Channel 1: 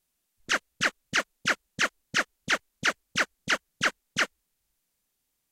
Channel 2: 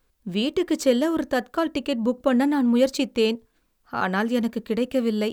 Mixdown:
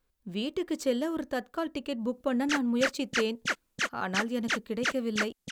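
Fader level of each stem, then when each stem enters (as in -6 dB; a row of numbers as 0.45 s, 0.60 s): -4.5 dB, -8.5 dB; 2.00 s, 0.00 s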